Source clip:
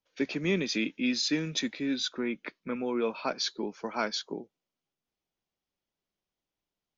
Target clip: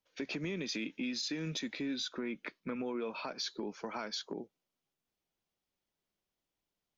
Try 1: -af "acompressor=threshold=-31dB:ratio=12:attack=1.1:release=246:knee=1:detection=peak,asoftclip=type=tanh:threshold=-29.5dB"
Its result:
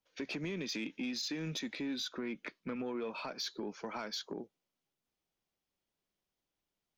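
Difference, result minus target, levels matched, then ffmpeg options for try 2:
soft clip: distortion +15 dB
-af "acompressor=threshold=-31dB:ratio=12:attack=1.1:release=246:knee=1:detection=peak,asoftclip=type=tanh:threshold=-21dB"

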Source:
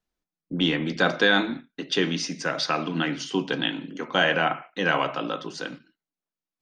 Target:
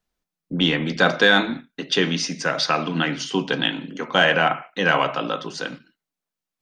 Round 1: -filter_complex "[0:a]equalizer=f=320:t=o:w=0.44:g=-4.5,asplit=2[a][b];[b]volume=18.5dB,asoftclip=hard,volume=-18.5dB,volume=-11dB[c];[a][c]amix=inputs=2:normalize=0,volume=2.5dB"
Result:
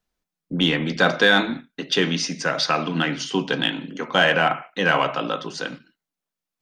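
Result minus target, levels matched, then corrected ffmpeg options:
overloaded stage: distortion +10 dB
-filter_complex "[0:a]equalizer=f=320:t=o:w=0.44:g=-4.5,asplit=2[a][b];[b]volume=12dB,asoftclip=hard,volume=-12dB,volume=-11dB[c];[a][c]amix=inputs=2:normalize=0,volume=2.5dB"

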